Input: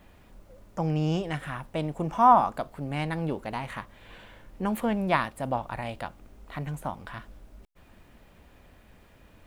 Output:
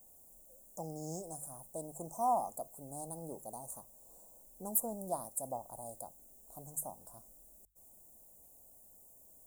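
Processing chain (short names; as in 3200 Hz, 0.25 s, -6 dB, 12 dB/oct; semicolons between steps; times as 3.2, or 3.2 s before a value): Chebyshev band-stop 720–7400 Hz, order 3; pre-emphasis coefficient 0.97; notches 50/100/150 Hz; gain +11 dB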